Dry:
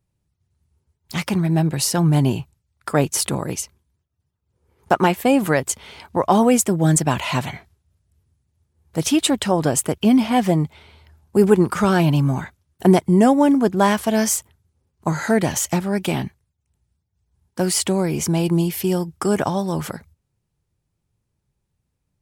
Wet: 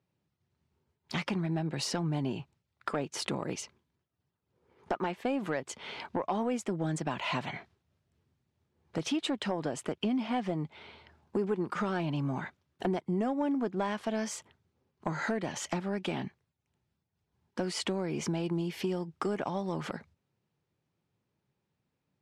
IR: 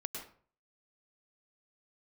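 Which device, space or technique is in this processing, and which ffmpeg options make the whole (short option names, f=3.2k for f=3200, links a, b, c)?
AM radio: -af "highpass=180,lowpass=4.1k,acompressor=threshold=-30dB:ratio=4,asoftclip=type=tanh:threshold=-19.5dB"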